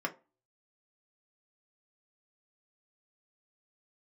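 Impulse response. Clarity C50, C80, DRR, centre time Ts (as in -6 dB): 17.5 dB, 24.0 dB, 0.5 dB, 7 ms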